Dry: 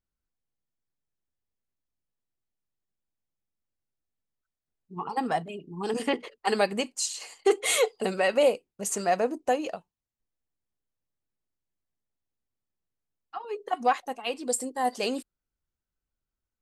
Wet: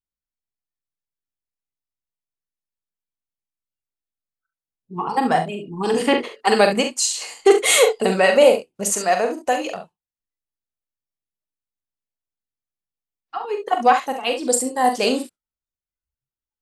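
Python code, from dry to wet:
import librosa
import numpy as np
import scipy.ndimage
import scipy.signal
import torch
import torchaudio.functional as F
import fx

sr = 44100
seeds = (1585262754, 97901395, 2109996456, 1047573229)

y = fx.low_shelf(x, sr, hz=490.0, db=-9.0, at=(8.89, 9.76))
y = fx.room_early_taps(y, sr, ms=(43, 68), db=(-7.0, -10.5))
y = fx.noise_reduce_blind(y, sr, reduce_db=19)
y = y * librosa.db_to_amplitude(8.5)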